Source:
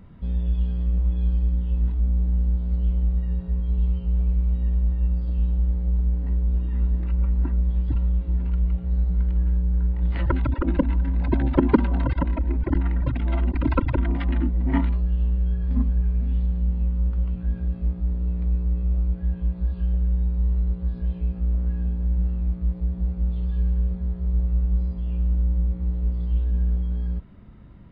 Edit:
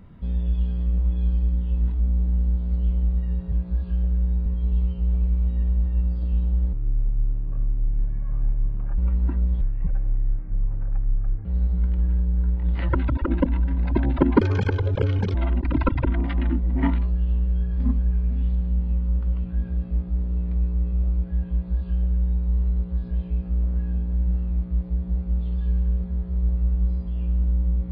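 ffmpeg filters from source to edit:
-filter_complex "[0:a]asplit=9[a][b][c][d][e][f][g][h][i];[a]atrim=end=3.522[j];[b]atrim=start=19.418:end=20.362[k];[c]atrim=start=3.518:end=5.794[l];[d]atrim=start=5.79:end=7.14,asetpts=PTS-STARTPTS,asetrate=26460,aresample=44100[m];[e]atrim=start=7.136:end=7.774[n];[f]atrim=start=7.77:end=8.82,asetpts=PTS-STARTPTS,asetrate=25137,aresample=44100[o];[g]atrim=start=8.816:end=11.784[p];[h]atrim=start=11.78:end=13.25,asetpts=PTS-STARTPTS,asetrate=69678,aresample=44100[q];[i]atrim=start=13.246[r];[j][k]acrossfade=d=0.004:c1=hsin:c2=hsin[s];[s][l]acrossfade=d=0.004:c1=hsin:c2=hsin[t];[t][m]acrossfade=d=0.004:c1=hsin:c2=hsin[u];[u][n]acrossfade=d=0.004:c1=hsin:c2=hsin[v];[v][o]acrossfade=d=0.004:c1=hsin:c2=hsin[w];[w][p]acrossfade=d=0.004:c1=hsin:c2=hsin[x];[x][q]acrossfade=d=0.004:c1=hsin:c2=hsin[y];[y][r]acrossfade=d=0.004:c1=hsin:c2=hsin"

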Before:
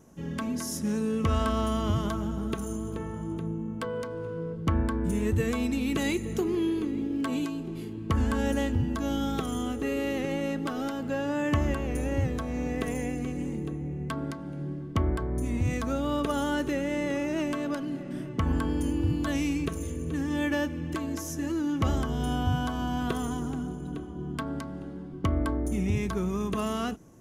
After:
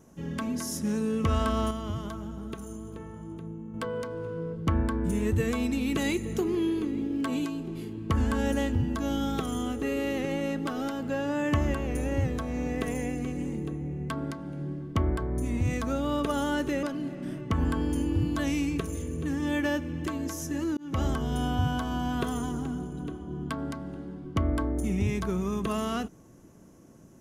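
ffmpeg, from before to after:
-filter_complex "[0:a]asplit=5[a][b][c][d][e];[a]atrim=end=1.712[f];[b]atrim=start=1.708:end=3.742,asetpts=PTS-STARTPTS,volume=-6.5dB[g];[c]atrim=start=3.738:end=16.832[h];[d]atrim=start=17.708:end=21.65,asetpts=PTS-STARTPTS,afade=t=out:st=3.938:d=0.004:c=hsin[i];[e]atrim=start=21.65,asetpts=PTS-STARTPTS,afade=t=in:d=0.28[j];[f][g]acrossfade=d=0.004:c1=hsin:c2=hsin[k];[k][h]acrossfade=d=0.004:c1=hsin:c2=hsin[l];[i][j]concat=n=2:v=0:a=1[m];[l][m]acrossfade=d=0.004:c1=hsin:c2=hsin"

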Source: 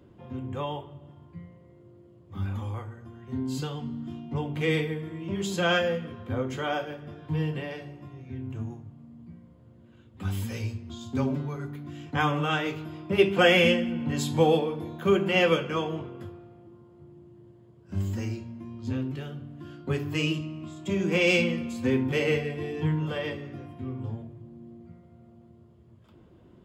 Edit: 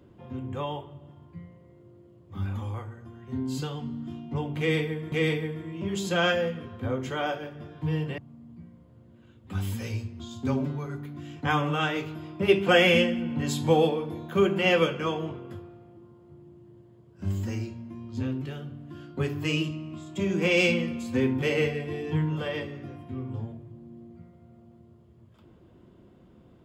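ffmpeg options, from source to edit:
-filter_complex "[0:a]asplit=3[a][b][c];[a]atrim=end=5.122[d];[b]atrim=start=4.588:end=7.652[e];[c]atrim=start=8.878[f];[d][e]acrossfade=d=0.004:c1=hsin:c2=hsin[g];[g][f]acrossfade=d=0.004:c1=hsin:c2=hsin"

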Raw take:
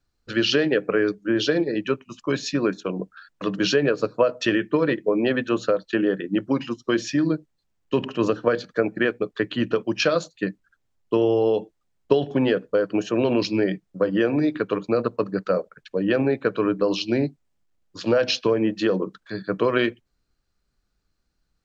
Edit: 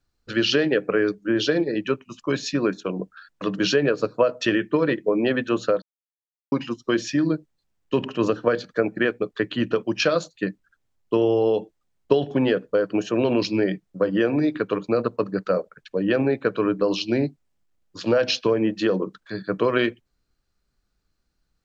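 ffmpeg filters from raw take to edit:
-filter_complex "[0:a]asplit=3[a][b][c];[a]atrim=end=5.82,asetpts=PTS-STARTPTS,afade=t=out:st=5.816:d=0.004:c=hsin[d];[b]atrim=start=5.82:end=6.52,asetpts=PTS-STARTPTS,volume=0[e];[c]atrim=start=6.52,asetpts=PTS-STARTPTS,afade=t=in:d=0.004:c=hsin[f];[d][e][f]concat=n=3:v=0:a=1"

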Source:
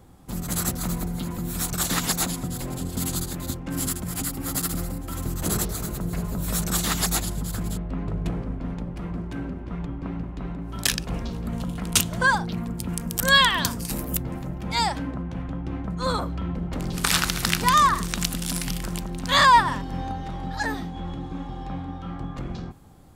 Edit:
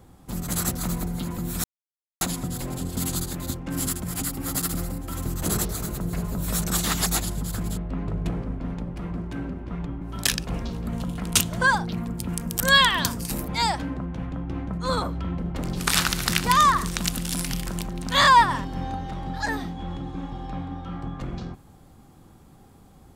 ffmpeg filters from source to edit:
-filter_complex "[0:a]asplit=5[a][b][c][d][e];[a]atrim=end=1.64,asetpts=PTS-STARTPTS,afade=t=out:st=1.636:d=0.004:c=hsin[f];[b]atrim=start=1.64:end=2.21,asetpts=PTS-STARTPTS,volume=0[g];[c]atrim=start=2.21:end=10.012,asetpts=PTS-STARTPTS,afade=t=in:d=0.004:c=hsin[h];[d]atrim=start=10.608:end=14.082[i];[e]atrim=start=14.648[j];[f][g][h]concat=n=3:v=0:a=1[k];[k][i]acrossfade=d=0.004:c1=hsin:c2=hsin[l];[l][j]acrossfade=d=0.004:c1=hsin:c2=hsin"

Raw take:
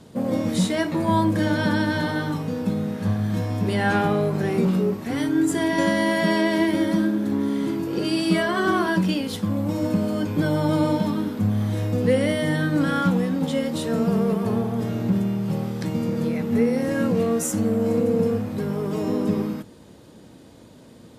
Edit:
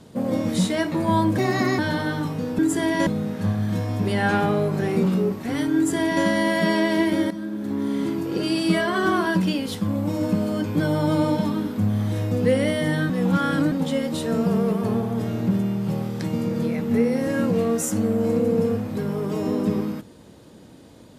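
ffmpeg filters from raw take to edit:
-filter_complex "[0:a]asplit=8[a][b][c][d][e][f][g][h];[a]atrim=end=1.384[i];[b]atrim=start=1.38:end=1.88,asetpts=PTS-STARTPTS,asetrate=54243,aresample=44100[j];[c]atrim=start=1.876:end=2.682[k];[d]atrim=start=5.368:end=5.852[l];[e]atrim=start=2.678:end=6.92,asetpts=PTS-STARTPTS,afade=t=out:st=4.238:d=0.004:c=hsin:silence=0.188365[m];[f]atrim=start=6.92:end=12.712,asetpts=PTS-STARTPTS,afade=t=in:d=0.66:silence=0.188365[n];[g]atrim=start=12.708:end=13.332,asetpts=PTS-STARTPTS,areverse[o];[h]atrim=start=13.328[p];[i][j]acrossfade=d=0.004:c1=hsin:c2=hsin[q];[q][k]acrossfade=d=0.004:c1=hsin:c2=hsin[r];[r][l]acrossfade=d=0.004:c1=hsin:c2=hsin[s];[m][n]concat=n=2:v=0:a=1[t];[s][t]acrossfade=d=0.004:c1=hsin:c2=hsin[u];[u][o]acrossfade=d=0.004:c1=hsin:c2=hsin[v];[v][p]acrossfade=d=0.004:c1=hsin:c2=hsin"

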